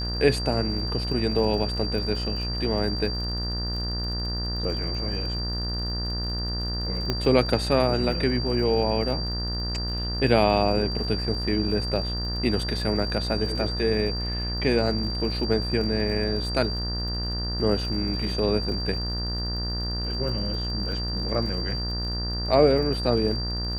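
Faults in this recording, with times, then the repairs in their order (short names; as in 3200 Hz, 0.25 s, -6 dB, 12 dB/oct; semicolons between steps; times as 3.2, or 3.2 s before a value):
buzz 60 Hz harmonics 32 -30 dBFS
crackle 48/s -35 dBFS
tone 4700 Hz -31 dBFS
7.1 pop -12 dBFS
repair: de-click; notch 4700 Hz, Q 30; de-hum 60 Hz, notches 32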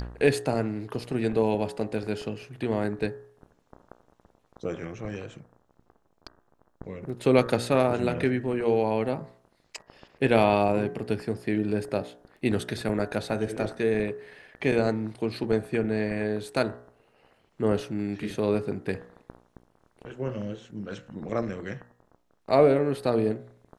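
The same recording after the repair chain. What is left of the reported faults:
7.1 pop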